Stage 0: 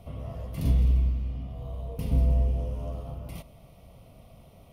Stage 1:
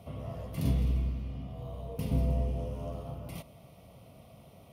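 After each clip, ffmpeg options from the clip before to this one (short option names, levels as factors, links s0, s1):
-af "highpass=91"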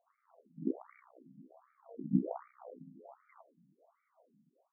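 -af "aeval=exprs='0.141*(cos(1*acos(clip(val(0)/0.141,-1,1)))-cos(1*PI/2))+0.0447*(cos(2*acos(clip(val(0)/0.141,-1,1)))-cos(2*PI/2))+0.0398*(cos(3*acos(clip(val(0)/0.141,-1,1)))-cos(3*PI/2))':c=same,dynaudnorm=f=290:g=5:m=4.47,afftfilt=real='re*between(b*sr/1024,200*pow(1700/200,0.5+0.5*sin(2*PI*1.3*pts/sr))/1.41,200*pow(1700/200,0.5+0.5*sin(2*PI*1.3*pts/sr))*1.41)':imag='im*between(b*sr/1024,200*pow(1700/200,0.5+0.5*sin(2*PI*1.3*pts/sr))/1.41,200*pow(1700/200,0.5+0.5*sin(2*PI*1.3*pts/sr))*1.41)':win_size=1024:overlap=0.75,volume=0.708"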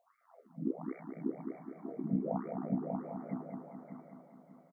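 -filter_complex "[0:a]asplit=2[s0][s1];[s1]adelay=590,lowpass=f=2100:p=1,volume=0.596,asplit=2[s2][s3];[s3]adelay=590,lowpass=f=2100:p=1,volume=0.32,asplit=2[s4][s5];[s5]adelay=590,lowpass=f=2100:p=1,volume=0.32,asplit=2[s6][s7];[s7]adelay=590,lowpass=f=2100:p=1,volume=0.32[s8];[s2][s4][s6][s8]amix=inputs=4:normalize=0[s9];[s0][s9]amix=inputs=2:normalize=0,alimiter=level_in=1.33:limit=0.0631:level=0:latency=1:release=165,volume=0.75,asplit=2[s10][s11];[s11]aecho=0:1:210|420|630|840|1050|1260|1470:0.501|0.271|0.146|0.0789|0.0426|0.023|0.0124[s12];[s10][s12]amix=inputs=2:normalize=0,volume=1.68"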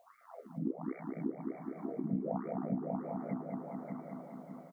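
-af "acompressor=threshold=0.00282:ratio=2,volume=3.16"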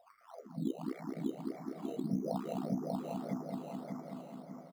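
-filter_complex "[0:a]aresample=8000,aresample=44100,asplit=2[s0][s1];[s1]acrusher=samples=10:mix=1:aa=0.000001:lfo=1:lforange=6:lforate=1.7,volume=0.501[s2];[s0][s2]amix=inputs=2:normalize=0,volume=0.668"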